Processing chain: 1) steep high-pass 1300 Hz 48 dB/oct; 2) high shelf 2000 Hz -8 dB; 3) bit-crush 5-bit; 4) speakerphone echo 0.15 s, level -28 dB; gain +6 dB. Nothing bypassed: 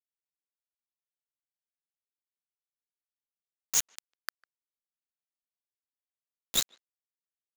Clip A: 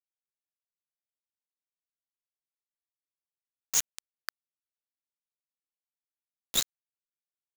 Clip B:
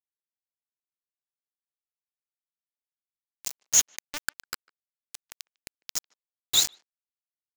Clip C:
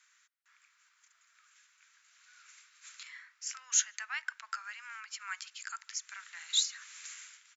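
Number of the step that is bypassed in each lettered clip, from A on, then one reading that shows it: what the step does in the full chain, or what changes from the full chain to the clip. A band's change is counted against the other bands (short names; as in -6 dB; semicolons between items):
4, echo-to-direct -31.0 dB to none; 2, 250 Hz band -4.0 dB; 3, crest factor change -2.0 dB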